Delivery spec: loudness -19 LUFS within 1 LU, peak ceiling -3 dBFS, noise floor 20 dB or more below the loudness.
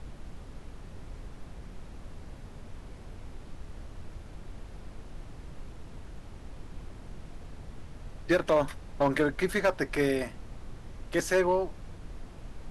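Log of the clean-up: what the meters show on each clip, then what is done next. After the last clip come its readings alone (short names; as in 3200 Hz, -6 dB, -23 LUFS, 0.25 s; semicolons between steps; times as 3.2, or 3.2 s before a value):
clipped 0.2%; flat tops at -17.5 dBFS; noise floor -47 dBFS; noise floor target -49 dBFS; loudness -28.5 LUFS; peak -17.5 dBFS; loudness target -19.0 LUFS
-> clip repair -17.5 dBFS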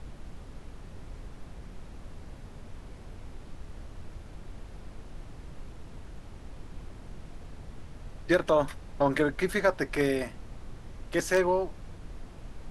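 clipped 0.0%; noise floor -47 dBFS; noise floor target -48 dBFS
-> noise print and reduce 6 dB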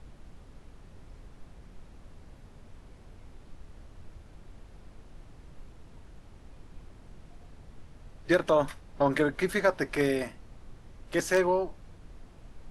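noise floor -52 dBFS; loudness -28.0 LUFS; peak -9.0 dBFS; loudness target -19.0 LUFS
-> gain +9 dB; limiter -3 dBFS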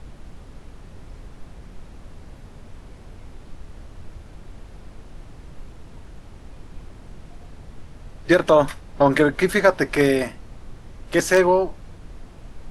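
loudness -19.0 LUFS; peak -3.0 dBFS; noise floor -43 dBFS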